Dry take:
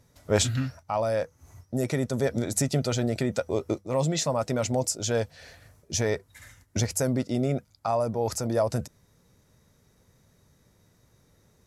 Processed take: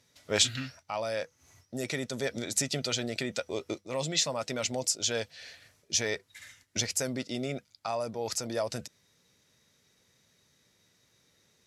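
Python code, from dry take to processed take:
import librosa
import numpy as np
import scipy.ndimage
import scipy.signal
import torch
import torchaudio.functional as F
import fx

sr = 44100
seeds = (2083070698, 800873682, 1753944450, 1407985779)

y = fx.weighting(x, sr, curve='D')
y = y * librosa.db_to_amplitude(-6.5)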